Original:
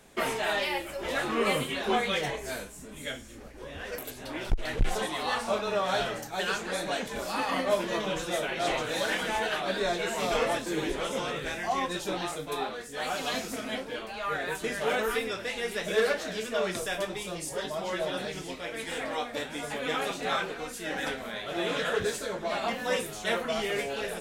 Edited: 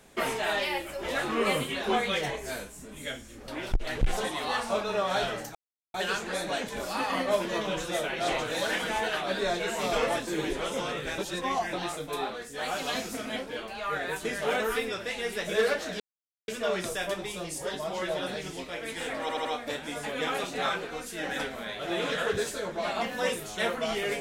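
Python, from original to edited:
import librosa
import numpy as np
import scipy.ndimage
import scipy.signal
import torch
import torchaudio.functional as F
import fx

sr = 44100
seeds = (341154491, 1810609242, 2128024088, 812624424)

y = fx.edit(x, sr, fx.cut(start_s=3.48, length_s=0.78),
    fx.insert_silence(at_s=6.33, length_s=0.39),
    fx.reverse_span(start_s=11.57, length_s=0.55),
    fx.insert_silence(at_s=16.39, length_s=0.48),
    fx.stutter(start_s=19.12, slice_s=0.08, count=4), tone=tone)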